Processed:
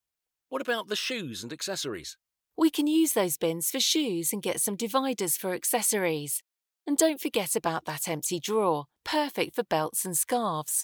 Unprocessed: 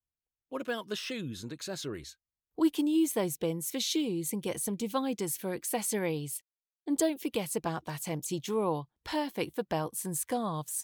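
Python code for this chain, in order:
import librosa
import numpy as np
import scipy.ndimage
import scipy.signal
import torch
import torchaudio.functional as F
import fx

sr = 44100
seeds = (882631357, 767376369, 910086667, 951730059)

y = fx.low_shelf(x, sr, hz=260.0, db=-11.5)
y = y * 10.0 ** (7.5 / 20.0)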